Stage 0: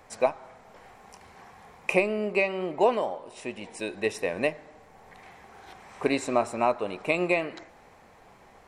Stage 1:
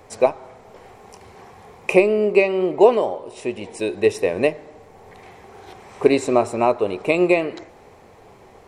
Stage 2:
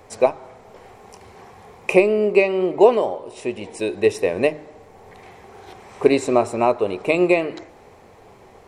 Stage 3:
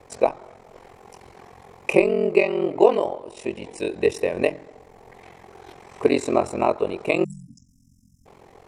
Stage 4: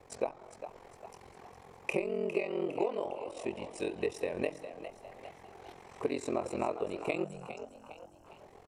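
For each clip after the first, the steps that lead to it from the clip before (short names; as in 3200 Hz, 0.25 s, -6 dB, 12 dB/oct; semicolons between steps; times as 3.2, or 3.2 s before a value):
fifteen-band EQ 100 Hz +7 dB, 400 Hz +8 dB, 1600 Hz -4 dB; gain +5 dB
de-hum 152 Hz, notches 2
spectral delete 7.24–8.26, 270–5000 Hz; ring modulator 22 Hz
compressor 4:1, threshold -22 dBFS, peak gain reduction 11.5 dB; on a send: frequency-shifting echo 0.406 s, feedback 47%, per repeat +78 Hz, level -11 dB; on the sum: gain -7.5 dB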